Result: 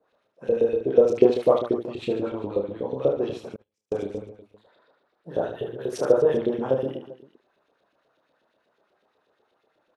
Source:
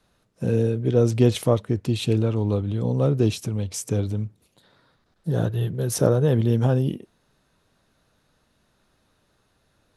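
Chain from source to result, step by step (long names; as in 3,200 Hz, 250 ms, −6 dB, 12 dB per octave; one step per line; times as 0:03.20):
tilt shelving filter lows +7.5 dB, about 660 Hz
auto-filter band-pass saw up 8.2 Hz 400–3,600 Hz
bass and treble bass −11 dB, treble +2 dB
reverse bouncing-ball delay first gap 30 ms, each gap 1.5×, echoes 5
0:03.56–0:04.06: noise gate −39 dBFS, range −40 dB
level +7 dB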